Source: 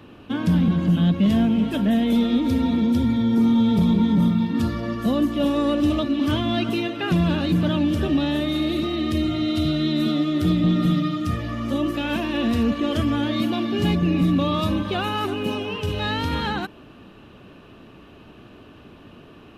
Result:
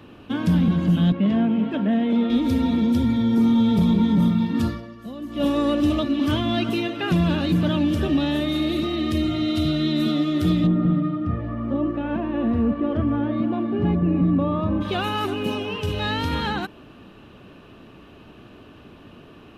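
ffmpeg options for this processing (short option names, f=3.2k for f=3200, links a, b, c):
-filter_complex "[0:a]asettb=1/sr,asplit=3[a][b][c];[a]atrim=end=1.124[d];[b]atrim=start=1.12:end=2.3,asetpts=PTS-STARTPTS,afade=t=in:d=0.004:c=qsin,afade=t=out:st=1.176:d=0.004:c=qsin,highpass=170,lowpass=2.4k[e];[c]atrim=start=2.296[f];[d][e]acrossfade=d=0.004:c1=hsin:c2=qsin[g];[g][f]acrossfade=d=0.004:c1=qsin:c2=hsin,asplit=3[h][i][j];[h]afade=t=out:st=10.66:d=0.02[k];[i]lowpass=1.2k,afade=t=in:st=10.66:d=0.02,afade=t=out:st=14.8:d=0.02[l];[j]afade=t=in:st=14.8:d=0.02[m];[k][l][m]amix=inputs=3:normalize=0,asplit=3[n][o][p];[n]atrim=end=4.93,asetpts=PTS-STARTPTS,afade=t=out:st=4.68:d=0.25:c=qua:silence=0.199526[q];[o]atrim=start=4.93:end=5.19,asetpts=PTS-STARTPTS,volume=-14dB[r];[p]atrim=start=5.19,asetpts=PTS-STARTPTS,afade=t=in:d=0.25:c=qua:silence=0.199526[s];[q][r][s]concat=n=3:v=0:a=1"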